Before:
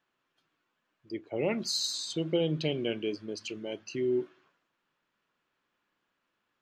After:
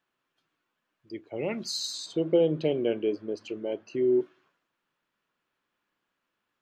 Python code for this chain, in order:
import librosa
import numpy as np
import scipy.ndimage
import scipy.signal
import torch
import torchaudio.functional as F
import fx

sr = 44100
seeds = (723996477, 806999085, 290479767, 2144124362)

y = fx.curve_eq(x, sr, hz=(150.0, 500.0, 5200.0), db=(0, 9, -8), at=(2.06, 4.21))
y = y * 10.0 ** (-1.5 / 20.0)